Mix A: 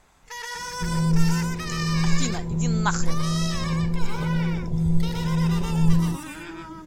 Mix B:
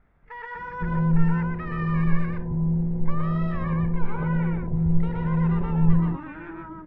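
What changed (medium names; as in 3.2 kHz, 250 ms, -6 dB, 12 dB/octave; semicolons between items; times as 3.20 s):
speech: muted; master: add low-pass 1.9 kHz 24 dB/octave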